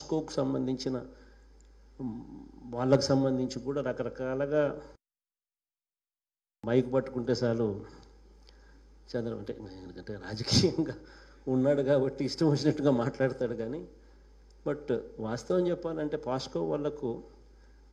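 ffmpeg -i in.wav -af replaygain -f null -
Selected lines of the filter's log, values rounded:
track_gain = +10.1 dB
track_peak = 0.192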